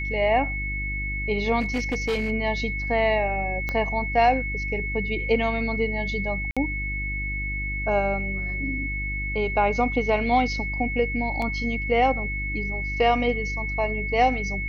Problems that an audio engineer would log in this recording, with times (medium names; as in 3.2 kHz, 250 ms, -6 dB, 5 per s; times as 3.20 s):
hum 50 Hz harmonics 7 -31 dBFS
whine 2.2 kHz -29 dBFS
1.60–2.31 s: clipped -21 dBFS
3.69 s: pop -15 dBFS
6.51–6.57 s: dropout 56 ms
11.42 s: dropout 2.4 ms